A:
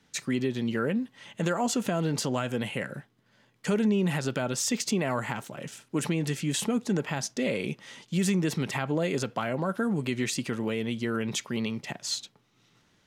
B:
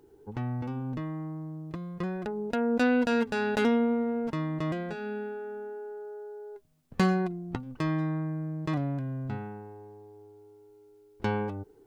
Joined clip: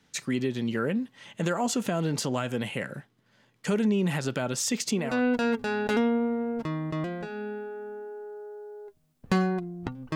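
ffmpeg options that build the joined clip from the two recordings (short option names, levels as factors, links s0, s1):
-filter_complex "[0:a]apad=whole_dur=10.15,atrim=end=10.15,atrim=end=5.24,asetpts=PTS-STARTPTS[s0];[1:a]atrim=start=2.62:end=7.83,asetpts=PTS-STARTPTS[s1];[s0][s1]acrossfade=d=0.3:c1=tri:c2=tri"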